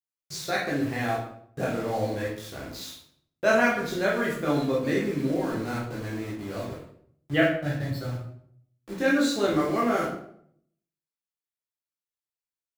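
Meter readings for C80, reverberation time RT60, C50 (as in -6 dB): 7.5 dB, 0.65 s, 3.0 dB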